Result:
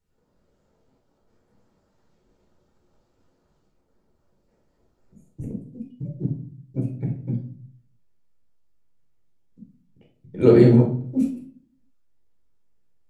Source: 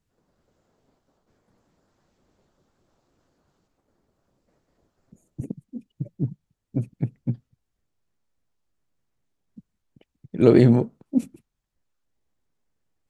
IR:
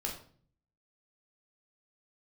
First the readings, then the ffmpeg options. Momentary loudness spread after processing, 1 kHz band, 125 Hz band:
23 LU, 0.0 dB, +2.0 dB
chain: -filter_complex "[1:a]atrim=start_sample=2205[a];[0:a][a]afir=irnorm=-1:irlink=0,volume=-2.5dB"

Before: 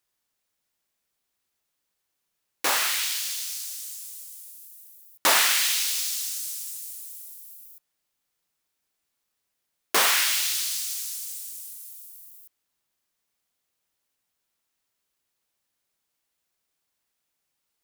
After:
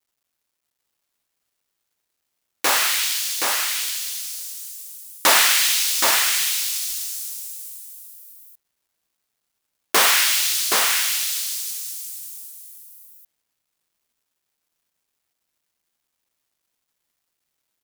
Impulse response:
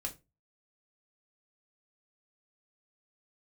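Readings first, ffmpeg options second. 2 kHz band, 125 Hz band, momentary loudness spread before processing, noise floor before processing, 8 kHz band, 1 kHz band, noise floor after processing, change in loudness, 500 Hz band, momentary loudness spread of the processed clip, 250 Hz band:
+6.5 dB, n/a, 21 LU, -80 dBFS, +6.5 dB, +6.0 dB, -79 dBFS, +5.5 dB, +6.0 dB, 19 LU, +6.0 dB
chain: -af "acontrast=27,acrusher=bits=10:mix=0:aa=0.000001,aecho=1:1:773:0.631"

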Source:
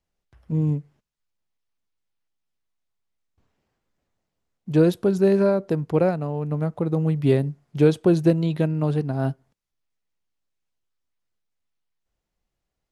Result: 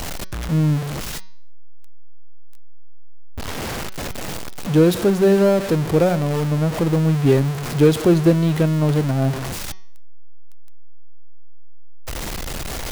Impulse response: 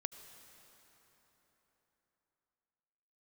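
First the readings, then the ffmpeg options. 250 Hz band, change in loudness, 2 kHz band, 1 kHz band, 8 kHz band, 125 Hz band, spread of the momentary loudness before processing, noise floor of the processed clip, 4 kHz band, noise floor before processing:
+4.0 dB, +3.0 dB, +9.0 dB, +6.5 dB, n/a, +5.0 dB, 8 LU, -27 dBFS, +13.0 dB, -82 dBFS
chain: -af "aeval=exprs='val(0)+0.5*0.075*sgn(val(0))':c=same,bandreject=f=187.7:t=h:w=4,bandreject=f=375.4:t=h:w=4,bandreject=f=563.1:t=h:w=4,bandreject=f=750.8:t=h:w=4,bandreject=f=938.5:t=h:w=4,bandreject=f=1.1262k:t=h:w=4,bandreject=f=1.3139k:t=h:w=4,bandreject=f=1.5016k:t=h:w=4,bandreject=f=1.6893k:t=h:w=4,bandreject=f=1.877k:t=h:w=4,bandreject=f=2.0647k:t=h:w=4,bandreject=f=2.2524k:t=h:w=4,bandreject=f=2.4401k:t=h:w=4,bandreject=f=2.6278k:t=h:w=4,bandreject=f=2.8155k:t=h:w=4,bandreject=f=3.0032k:t=h:w=4,bandreject=f=3.1909k:t=h:w=4,bandreject=f=3.3786k:t=h:w=4,bandreject=f=3.5663k:t=h:w=4,bandreject=f=3.754k:t=h:w=4,bandreject=f=3.9417k:t=h:w=4,bandreject=f=4.1294k:t=h:w=4,bandreject=f=4.3171k:t=h:w=4,bandreject=f=4.5048k:t=h:w=4,bandreject=f=4.6925k:t=h:w=4,bandreject=f=4.8802k:t=h:w=4,bandreject=f=5.0679k:t=h:w=4,bandreject=f=5.2556k:t=h:w=4,bandreject=f=5.4433k:t=h:w=4,bandreject=f=5.631k:t=h:w=4,bandreject=f=5.8187k:t=h:w=4,bandreject=f=6.0064k:t=h:w=4,bandreject=f=6.1941k:t=h:w=4,bandreject=f=6.3818k:t=h:w=4,volume=2dB"

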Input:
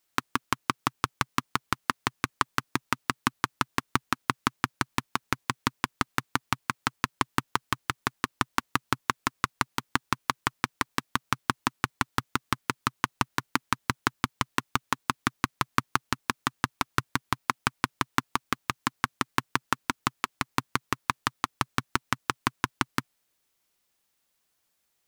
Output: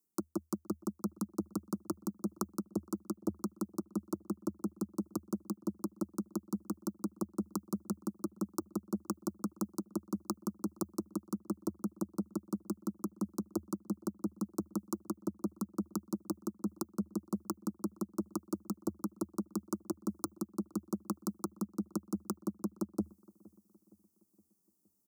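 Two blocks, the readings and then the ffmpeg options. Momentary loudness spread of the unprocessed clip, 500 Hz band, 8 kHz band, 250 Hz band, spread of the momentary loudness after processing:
3 LU, -1.0 dB, -9.0 dB, +0.5 dB, 2 LU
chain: -filter_complex "[0:a]equalizer=f=125:t=o:w=1:g=11,equalizer=f=250:t=o:w=1:g=10,equalizer=f=500:t=o:w=1:g=-11,equalizer=f=1k:t=o:w=1:g=-6,equalizer=f=2k:t=o:w=1:g=-9,equalizer=f=4k:t=o:w=1:g=-12,areverse,acompressor=threshold=-33dB:ratio=6,areverse,aeval=exprs='0.133*(cos(1*acos(clip(val(0)/0.133,-1,1)))-cos(1*PI/2))+0.0422*(cos(2*acos(clip(val(0)/0.133,-1,1)))-cos(2*PI/2))+0.0299*(cos(3*acos(clip(val(0)/0.133,-1,1)))-cos(3*PI/2))+0.00168*(cos(4*acos(clip(val(0)/0.133,-1,1)))-cos(4*PI/2))+0.00266*(cos(8*acos(clip(val(0)/0.133,-1,1)))-cos(8*PI/2))':c=same,asuperstop=centerf=2300:order=12:qfactor=0.79,asplit=2[a][b];[b]adelay=466,lowpass=f=1.1k:p=1,volume=-23dB,asplit=2[c][d];[d]adelay=466,lowpass=f=1.1k:p=1,volume=0.53,asplit=2[e][f];[f]adelay=466,lowpass=f=1.1k:p=1,volume=0.53,asplit=2[g][h];[h]adelay=466,lowpass=f=1.1k:p=1,volume=0.53[i];[c][e][g][i]amix=inputs=4:normalize=0[j];[a][j]amix=inputs=2:normalize=0,afreqshift=78,volume=8.5dB"

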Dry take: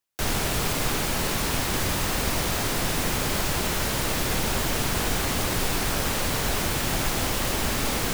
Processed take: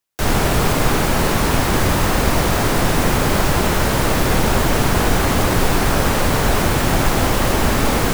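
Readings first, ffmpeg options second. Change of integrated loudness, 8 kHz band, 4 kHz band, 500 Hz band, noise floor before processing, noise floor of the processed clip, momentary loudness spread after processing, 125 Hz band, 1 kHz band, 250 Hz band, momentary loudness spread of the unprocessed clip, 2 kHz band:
+8.0 dB, +3.5 dB, +4.0 dB, +11.0 dB, -27 dBFS, -18 dBFS, 1 LU, +11.0 dB, +10.5 dB, +11.0 dB, 0 LU, +7.5 dB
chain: -filter_complex "[0:a]acrossover=split=1800[a][b];[a]dynaudnorm=f=140:g=3:m=7.5dB[c];[c][b]amix=inputs=2:normalize=0,volume=3.5dB"

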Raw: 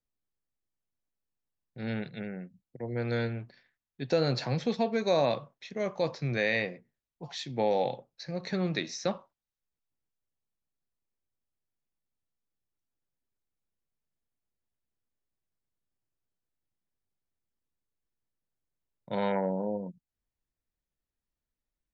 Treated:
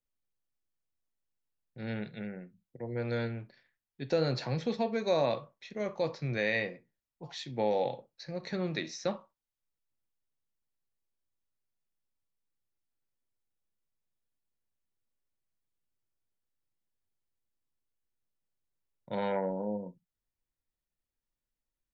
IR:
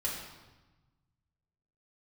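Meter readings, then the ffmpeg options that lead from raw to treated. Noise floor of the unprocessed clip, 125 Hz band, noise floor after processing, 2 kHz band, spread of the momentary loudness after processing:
under -85 dBFS, -3.0 dB, under -85 dBFS, -2.5 dB, 15 LU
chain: -filter_complex "[0:a]asplit=2[a][b];[b]lowpass=4.7k[c];[1:a]atrim=start_sample=2205,atrim=end_sample=3087[d];[c][d]afir=irnorm=-1:irlink=0,volume=-12.5dB[e];[a][e]amix=inputs=2:normalize=0,volume=-4dB"

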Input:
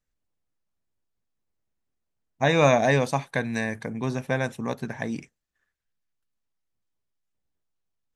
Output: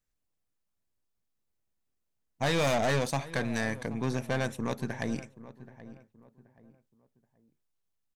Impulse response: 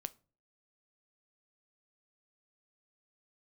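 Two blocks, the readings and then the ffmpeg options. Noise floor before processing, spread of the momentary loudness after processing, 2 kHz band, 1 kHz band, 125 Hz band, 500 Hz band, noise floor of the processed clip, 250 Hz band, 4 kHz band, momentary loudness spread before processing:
-81 dBFS, 23 LU, -5.5 dB, -6.5 dB, -5.0 dB, -7.0 dB, -81 dBFS, -4.5 dB, -2.0 dB, 13 LU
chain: -filter_complex "[0:a]aeval=exprs='(tanh(15.8*val(0)+0.55)-tanh(0.55))/15.8':c=same,highshelf=f=5.8k:g=5,asplit=2[a][b];[b]adelay=778,lowpass=f=1.4k:p=1,volume=-15.5dB,asplit=2[c][d];[d]adelay=778,lowpass=f=1.4k:p=1,volume=0.34,asplit=2[e][f];[f]adelay=778,lowpass=f=1.4k:p=1,volume=0.34[g];[a][c][e][g]amix=inputs=4:normalize=0"

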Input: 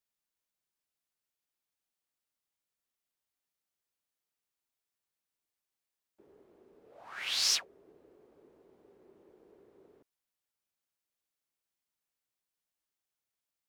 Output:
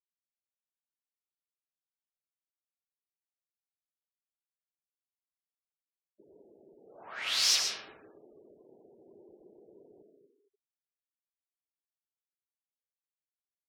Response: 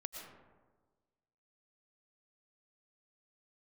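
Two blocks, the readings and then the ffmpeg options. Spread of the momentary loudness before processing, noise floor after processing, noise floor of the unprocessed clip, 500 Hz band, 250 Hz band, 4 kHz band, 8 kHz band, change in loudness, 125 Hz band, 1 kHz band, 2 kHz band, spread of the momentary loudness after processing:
15 LU, under -85 dBFS, under -85 dBFS, +4.5 dB, +4.5 dB, +3.0 dB, +3.0 dB, +2.0 dB, n/a, +4.5 dB, +3.5 dB, 19 LU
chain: -filter_complex "[1:a]atrim=start_sample=2205[a];[0:a][a]afir=irnorm=-1:irlink=0,afftfilt=real='re*gte(hypot(re,im),0.000708)':imag='im*gte(hypot(re,im),0.000708)':win_size=1024:overlap=0.75,volume=6dB"

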